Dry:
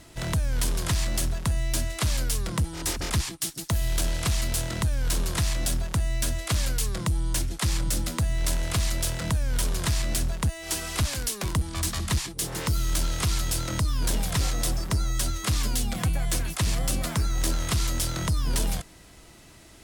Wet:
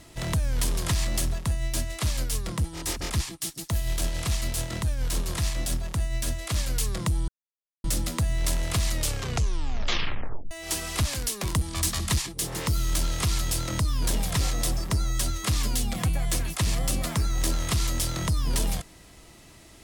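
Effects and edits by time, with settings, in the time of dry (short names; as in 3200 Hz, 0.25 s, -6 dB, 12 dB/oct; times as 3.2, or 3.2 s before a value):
1.37–6.71 tremolo 7.1 Hz, depth 37%
7.28–7.84 mute
8.91 tape stop 1.60 s
11.47–12.22 bell 14000 Hz +3.5 dB 2.6 oct
whole clip: notch 1500 Hz, Q 14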